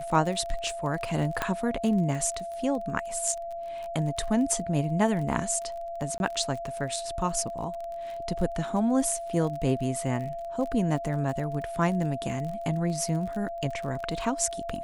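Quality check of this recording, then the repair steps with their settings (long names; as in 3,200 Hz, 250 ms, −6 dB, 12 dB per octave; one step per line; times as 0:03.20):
surface crackle 29 per second −34 dBFS
whistle 680 Hz −33 dBFS
0:01.42: click −12 dBFS
0:06.18–0:06.20: drop-out 21 ms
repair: click removal
notch filter 680 Hz, Q 30
repair the gap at 0:06.18, 21 ms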